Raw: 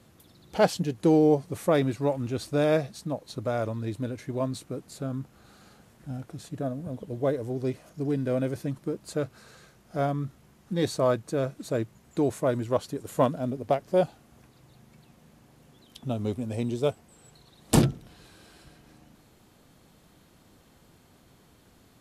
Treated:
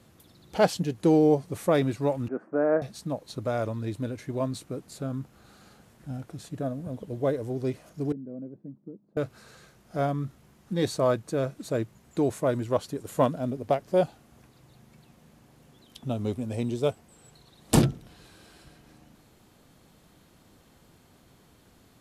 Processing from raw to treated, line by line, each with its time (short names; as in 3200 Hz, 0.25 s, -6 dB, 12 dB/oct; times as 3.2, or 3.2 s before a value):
2.28–2.82 elliptic band-pass 200–1600 Hz
8.12–9.17 ladder band-pass 240 Hz, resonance 45%